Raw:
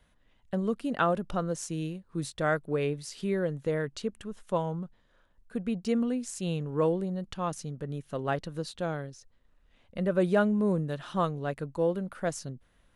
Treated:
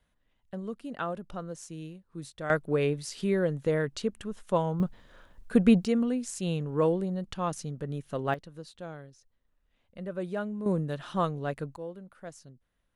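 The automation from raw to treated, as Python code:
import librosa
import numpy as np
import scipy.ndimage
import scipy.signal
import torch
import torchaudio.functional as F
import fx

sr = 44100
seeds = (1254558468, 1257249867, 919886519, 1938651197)

y = fx.gain(x, sr, db=fx.steps((0.0, -7.5), (2.5, 2.5), (4.8, 11.5), (5.85, 1.0), (8.34, -9.0), (10.66, 0.0), (11.76, -12.5)))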